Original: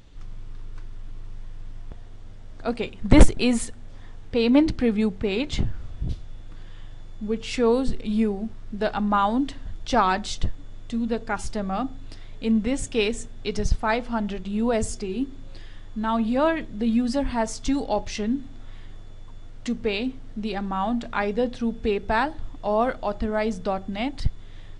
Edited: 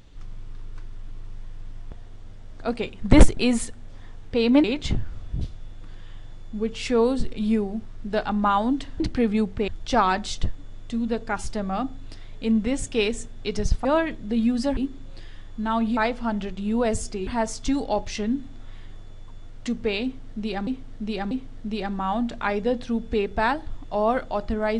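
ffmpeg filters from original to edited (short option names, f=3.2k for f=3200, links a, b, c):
-filter_complex "[0:a]asplit=10[a][b][c][d][e][f][g][h][i][j];[a]atrim=end=4.642[k];[b]atrim=start=5.318:end=9.682[l];[c]atrim=start=4.638:end=5.322[m];[d]atrim=start=9.678:end=13.852[n];[e]atrim=start=16.348:end=17.272[o];[f]atrim=start=15.148:end=16.352[p];[g]atrim=start=13.848:end=15.152[q];[h]atrim=start=17.268:end=20.672[r];[i]atrim=start=20.028:end=20.672[s];[j]atrim=start=20.028[t];[k][l]acrossfade=d=0.004:c1=hsin:c2=hsin[u];[u][m]acrossfade=d=0.004:c1=hsin:c2=hsin[v];[v][n]acrossfade=d=0.004:c1=hsin:c2=hsin[w];[w][o]acrossfade=d=0.004:c1=hsin:c2=hsin[x];[x][p]acrossfade=d=0.004:c1=hsin:c2=hsin[y];[y][q]acrossfade=d=0.004:c1=hsin:c2=hsin[z];[z][r]acrossfade=d=0.004:c1=hsin:c2=hsin[aa];[aa][s]acrossfade=d=0.004:c1=hsin:c2=hsin[ab];[ab][t]acrossfade=d=0.004:c1=hsin:c2=hsin"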